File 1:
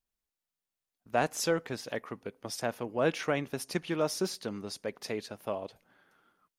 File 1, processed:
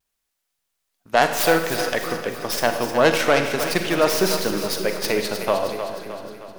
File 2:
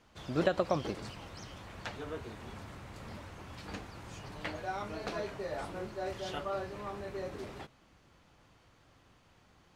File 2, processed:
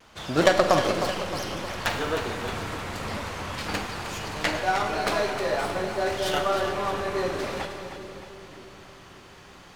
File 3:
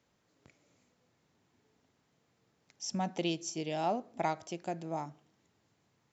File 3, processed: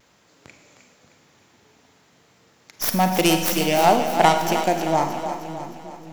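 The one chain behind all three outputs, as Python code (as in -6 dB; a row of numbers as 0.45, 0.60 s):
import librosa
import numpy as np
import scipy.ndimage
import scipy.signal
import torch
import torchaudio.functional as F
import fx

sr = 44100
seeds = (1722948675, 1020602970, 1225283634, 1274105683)

p1 = fx.tracing_dist(x, sr, depth_ms=0.19)
p2 = fx.low_shelf(p1, sr, hz=450.0, db=-7.5)
p3 = fx.rider(p2, sr, range_db=5, speed_s=2.0)
p4 = p2 + (p3 * 10.0 ** (1.0 / 20.0))
p5 = fx.rev_schroeder(p4, sr, rt60_s=1.1, comb_ms=33, drr_db=6.5)
p6 = fx.vibrato(p5, sr, rate_hz=0.54, depth_cents=20.0)
p7 = p6 + fx.echo_split(p6, sr, split_hz=370.0, low_ms=585, high_ms=310, feedback_pct=52, wet_db=-9.0, dry=0)
y = p7 * 10.0 ** (-1.5 / 20.0) / np.max(np.abs(p7))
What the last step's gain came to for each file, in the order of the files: +7.5, +7.0, +11.5 dB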